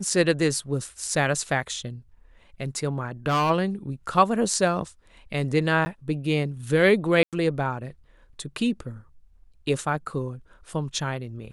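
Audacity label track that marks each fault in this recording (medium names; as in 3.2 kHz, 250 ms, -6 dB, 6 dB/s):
3.260000	3.510000	clipped -19 dBFS
5.850000	5.860000	dropout 10 ms
7.230000	7.330000	dropout 97 ms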